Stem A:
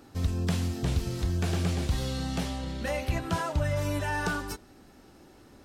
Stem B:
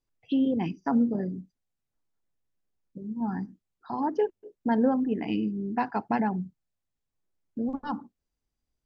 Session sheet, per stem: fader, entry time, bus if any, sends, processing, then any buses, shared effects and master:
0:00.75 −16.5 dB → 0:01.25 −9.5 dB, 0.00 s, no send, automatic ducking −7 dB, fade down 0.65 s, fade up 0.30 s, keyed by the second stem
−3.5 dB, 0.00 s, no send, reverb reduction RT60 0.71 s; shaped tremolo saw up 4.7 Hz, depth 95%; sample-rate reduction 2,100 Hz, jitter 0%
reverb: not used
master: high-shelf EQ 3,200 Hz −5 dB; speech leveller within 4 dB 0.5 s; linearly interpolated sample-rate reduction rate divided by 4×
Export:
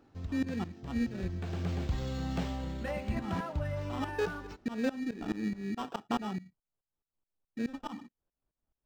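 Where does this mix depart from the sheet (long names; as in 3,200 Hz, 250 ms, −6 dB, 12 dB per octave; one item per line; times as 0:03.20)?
stem A −16.5 dB → −8.5 dB
stem B: missing reverb reduction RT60 0.71 s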